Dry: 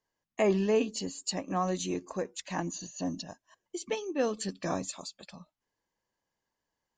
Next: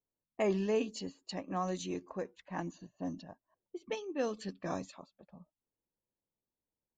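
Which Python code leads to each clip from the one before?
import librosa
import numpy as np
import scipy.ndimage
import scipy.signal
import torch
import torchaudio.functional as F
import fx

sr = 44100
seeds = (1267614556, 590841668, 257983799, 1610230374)

y = fx.env_lowpass(x, sr, base_hz=500.0, full_db=-26.0)
y = y * librosa.db_to_amplitude(-5.0)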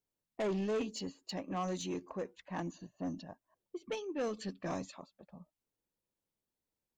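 y = 10.0 ** (-31.5 / 20.0) * np.tanh(x / 10.0 ** (-31.5 / 20.0))
y = y * librosa.db_to_amplitude(1.5)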